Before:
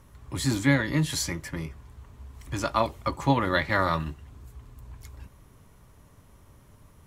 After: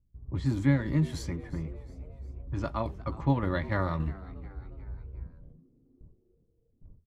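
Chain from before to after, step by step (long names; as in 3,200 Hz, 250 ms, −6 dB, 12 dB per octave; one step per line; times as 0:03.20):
noise gate with hold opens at −43 dBFS
low-pass that shuts in the quiet parts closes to 340 Hz, open at −24.5 dBFS
spectral tilt −3 dB per octave
shaped tremolo saw down 3.5 Hz, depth 40%
echo with shifted repeats 358 ms, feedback 48%, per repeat +100 Hz, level −20 dB
level −6.5 dB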